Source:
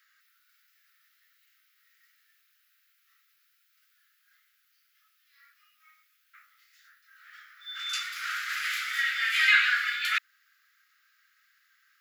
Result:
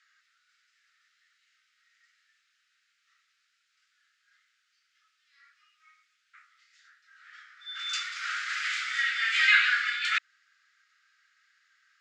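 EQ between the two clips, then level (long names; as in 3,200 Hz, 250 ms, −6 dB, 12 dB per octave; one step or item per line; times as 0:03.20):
Butterworth low-pass 8,100 Hz 36 dB per octave
0.0 dB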